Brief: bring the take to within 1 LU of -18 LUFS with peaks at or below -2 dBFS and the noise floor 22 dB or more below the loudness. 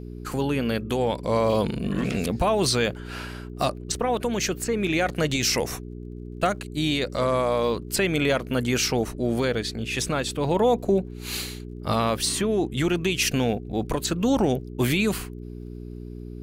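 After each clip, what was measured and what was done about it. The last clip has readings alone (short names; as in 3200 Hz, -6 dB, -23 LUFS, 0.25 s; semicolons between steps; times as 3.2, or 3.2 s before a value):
ticks 31/s; hum 60 Hz; harmonics up to 420 Hz; hum level -34 dBFS; loudness -24.5 LUFS; peak -11.5 dBFS; loudness target -18.0 LUFS
-> de-click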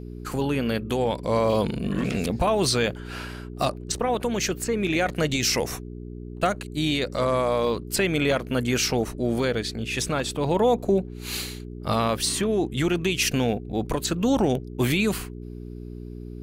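ticks 0.55/s; hum 60 Hz; harmonics up to 420 Hz; hum level -34 dBFS
-> de-hum 60 Hz, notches 7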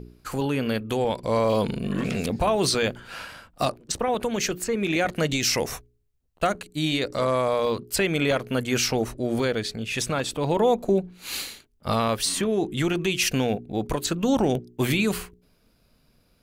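hum none; loudness -25.0 LUFS; peak -11.5 dBFS; loudness target -18.0 LUFS
-> gain +7 dB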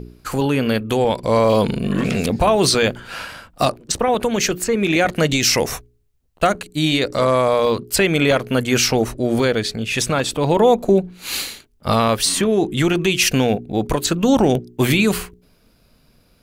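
loudness -18.0 LUFS; peak -4.5 dBFS; noise floor -57 dBFS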